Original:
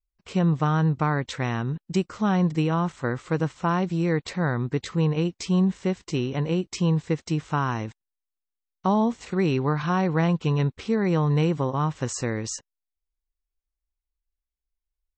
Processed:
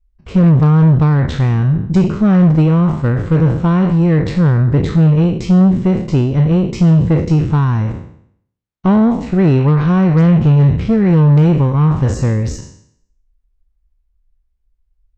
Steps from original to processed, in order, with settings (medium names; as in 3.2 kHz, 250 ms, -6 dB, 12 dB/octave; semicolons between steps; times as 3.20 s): spectral sustain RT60 0.65 s; RIAA curve playback; Chebyshev shaper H 5 -20 dB, 8 -22 dB, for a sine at -4 dBFS; trim +2.5 dB